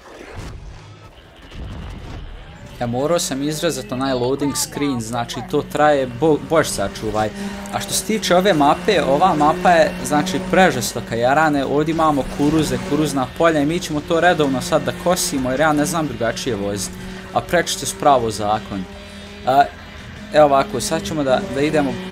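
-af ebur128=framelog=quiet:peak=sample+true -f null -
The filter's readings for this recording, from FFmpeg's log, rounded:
Integrated loudness:
  I:         -18.0 LUFS
  Threshold: -28.7 LUFS
Loudness range:
  LRA:         5.9 LU
  Threshold: -38.5 LUFS
  LRA low:   -22.0 LUFS
  LRA high:  -16.1 LUFS
Sample peak:
  Peak:       -1.1 dBFS
True peak:
  Peak:       -1.1 dBFS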